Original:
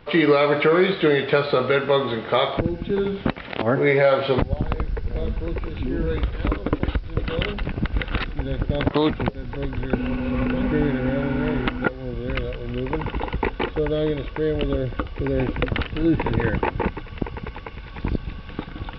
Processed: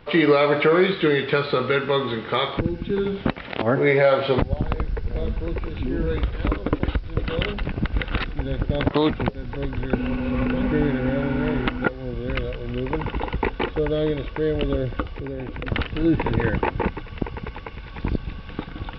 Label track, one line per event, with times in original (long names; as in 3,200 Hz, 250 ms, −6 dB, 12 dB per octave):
0.870000	3.070000	parametric band 650 Hz −9.5 dB 0.49 octaves
15.040000	15.660000	downward compressor, threshold −27 dBFS